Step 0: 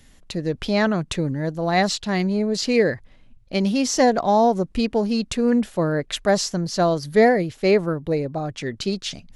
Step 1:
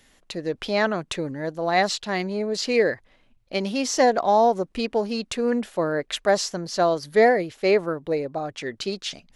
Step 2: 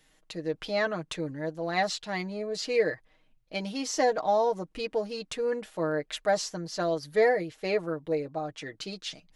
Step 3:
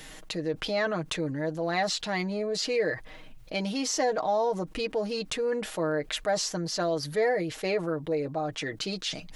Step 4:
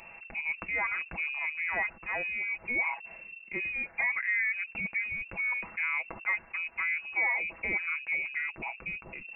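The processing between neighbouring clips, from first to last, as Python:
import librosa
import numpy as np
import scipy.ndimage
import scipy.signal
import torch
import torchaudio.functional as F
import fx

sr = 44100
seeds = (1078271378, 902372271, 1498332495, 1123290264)

y1 = fx.bass_treble(x, sr, bass_db=-12, treble_db=-3)
y2 = y1 + 0.66 * np.pad(y1, (int(6.4 * sr / 1000.0), 0))[:len(y1)]
y2 = y2 * librosa.db_to_amplitude(-8.0)
y3 = fx.env_flatten(y2, sr, amount_pct=50)
y3 = y3 * librosa.db_to_amplitude(-3.5)
y4 = fx.freq_invert(y3, sr, carrier_hz=2700)
y4 = y4 * librosa.db_to_amplitude(-3.5)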